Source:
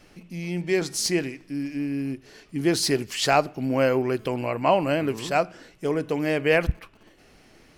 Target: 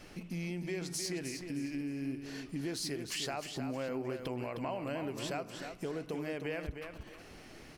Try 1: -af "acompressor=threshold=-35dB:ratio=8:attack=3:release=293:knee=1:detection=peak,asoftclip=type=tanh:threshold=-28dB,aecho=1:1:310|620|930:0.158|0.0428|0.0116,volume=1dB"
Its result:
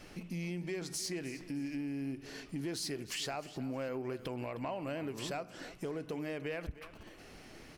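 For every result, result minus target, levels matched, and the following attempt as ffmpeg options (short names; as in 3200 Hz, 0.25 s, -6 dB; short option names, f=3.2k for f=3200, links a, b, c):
soft clip: distortion +19 dB; echo-to-direct -8.5 dB
-af "acompressor=threshold=-35dB:ratio=8:attack=3:release=293:knee=1:detection=peak,asoftclip=type=tanh:threshold=-18dB,aecho=1:1:310|620|930:0.158|0.0428|0.0116,volume=1dB"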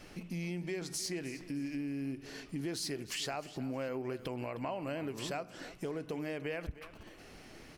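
echo-to-direct -8.5 dB
-af "acompressor=threshold=-35dB:ratio=8:attack=3:release=293:knee=1:detection=peak,asoftclip=type=tanh:threshold=-18dB,aecho=1:1:310|620|930:0.422|0.114|0.0307,volume=1dB"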